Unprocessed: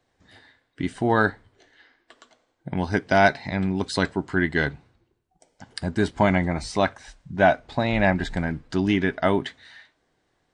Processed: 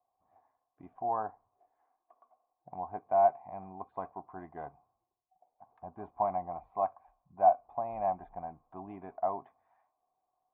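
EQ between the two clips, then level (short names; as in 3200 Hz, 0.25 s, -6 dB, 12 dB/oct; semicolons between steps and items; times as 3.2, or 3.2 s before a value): vocal tract filter a; air absorption 190 m; +1.5 dB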